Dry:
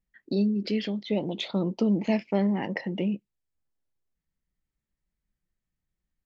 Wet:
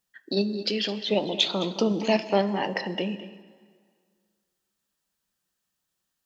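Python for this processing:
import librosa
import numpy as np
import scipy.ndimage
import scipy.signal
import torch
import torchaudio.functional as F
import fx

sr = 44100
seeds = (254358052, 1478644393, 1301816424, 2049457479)

p1 = fx.highpass(x, sr, hz=1200.0, slope=6)
p2 = fx.peak_eq(p1, sr, hz=2100.0, db=-12.0, octaves=0.36)
p3 = fx.level_steps(p2, sr, step_db=12)
p4 = p2 + (p3 * 10.0 ** (-1.5 / 20.0))
p5 = p4 + 10.0 ** (-14.0 / 20.0) * np.pad(p4, (int(214 * sr / 1000.0), 0))[:len(p4)]
p6 = fx.rev_plate(p5, sr, seeds[0], rt60_s=1.9, hf_ratio=0.85, predelay_ms=0, drr_db=13.5)
y = p6 * 10.0 ** (9.0 / 20.0)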